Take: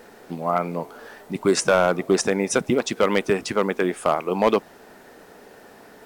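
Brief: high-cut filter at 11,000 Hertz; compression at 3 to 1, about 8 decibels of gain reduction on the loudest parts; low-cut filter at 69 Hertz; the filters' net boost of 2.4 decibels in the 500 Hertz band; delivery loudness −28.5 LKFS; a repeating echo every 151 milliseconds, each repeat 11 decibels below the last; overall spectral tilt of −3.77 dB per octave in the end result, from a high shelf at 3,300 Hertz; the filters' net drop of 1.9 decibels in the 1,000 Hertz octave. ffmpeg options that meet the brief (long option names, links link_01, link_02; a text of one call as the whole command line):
ffmpeg -i in.wav -af "highpass=69,lowpass=11000,equalizer=frequency=500:width_type=o:gain=4,equalizer=frequency=1000:width_type=o:gain=-5,highshelf=frequency=3300:gain=6,acompressor=threshold=-23dB:ratio=3,aecho=1:1:151|302|453:0.282|0.0789|0.0221,volume=-2dB" out.wav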